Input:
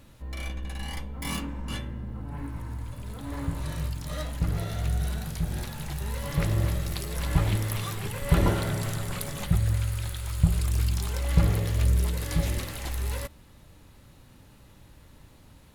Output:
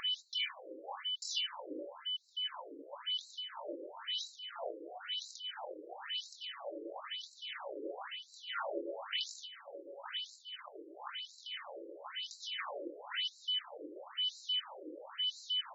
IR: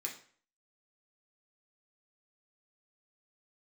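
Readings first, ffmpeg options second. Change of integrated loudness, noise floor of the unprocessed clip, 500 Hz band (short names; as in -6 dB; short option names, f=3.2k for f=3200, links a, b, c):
-10.5 dB, -53 dBFS, -7.5 dB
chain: -filter_complex "[0:a]asplit=2[a][b];[b]adelay=23,volume=-7dB[c];[a][c]amix=inputs=2:normalize=0,acompressor=mode=upward:threshold=-32dB:ratio=2.5,aeval=exprs='val(0)+0.0141*sin(2*PI*3000*n/s)':c=same,lowshelf=f=150:g=9,areverse,acompressor=threshold=-28dB:ratio=16,areverse,afftfilt=real='re*between(b*sr/1024,390*pow(5500/390,0.5+0.5*sin(2*PI*0.99*pts/sr))/1.41,390*pow(5500/390,0.5+0.5*sin(2*PI*0.99*pts/sr))*1.41)':imag='im*between(b*sr/1024,390*pow(5500/390,0.5+0.5*sin(2*PI*0.99*pts/sr))/1.41,390*pow(5500/390,0.5+0.5*sin(2*PI*0.99*pts/sr))*1.41)':win_size=1024:overlap=0.75,volume=7dB"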